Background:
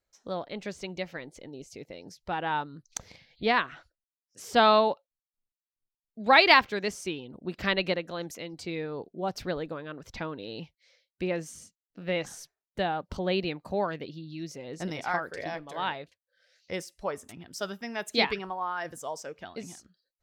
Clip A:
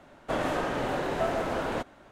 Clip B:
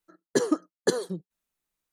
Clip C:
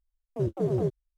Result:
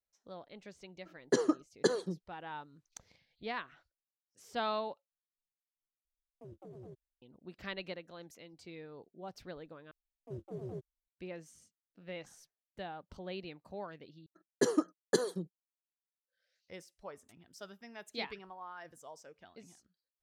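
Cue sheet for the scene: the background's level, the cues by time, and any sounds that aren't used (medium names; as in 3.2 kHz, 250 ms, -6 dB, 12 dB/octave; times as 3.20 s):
background -14.5 dB
0.97 s: add B -4.5 dB + low-pass 6.8 kHz
6.05 s: replace with C -16.5 dB + peak limiter -27 dBFS
9.91 s: replace with C -16 dB
14.26 s: replace with B -5 dB + expander -49 dBFS
not used: A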